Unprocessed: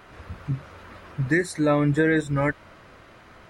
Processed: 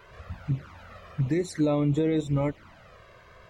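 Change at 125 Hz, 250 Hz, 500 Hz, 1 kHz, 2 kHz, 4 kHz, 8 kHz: -1.5 dB, -2.5 dB, -4.0 dB, -7.5 dB, -16.5 dB, -3.5 dB, -5.5 dB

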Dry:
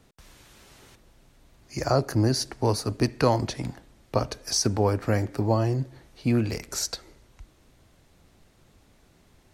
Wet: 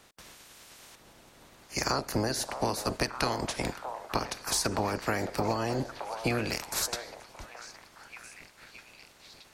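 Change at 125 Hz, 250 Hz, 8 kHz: -11.0 dB, -7.0 dB, -2.0 dB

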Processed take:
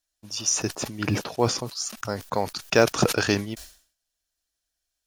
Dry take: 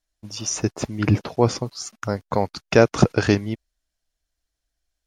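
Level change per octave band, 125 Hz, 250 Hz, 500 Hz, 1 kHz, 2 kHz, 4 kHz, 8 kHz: -7.5 dB, -5.5 dB, -4.0 dB, -2.0 dB, -0.5 dB, +3.0 dB, +3.5 dB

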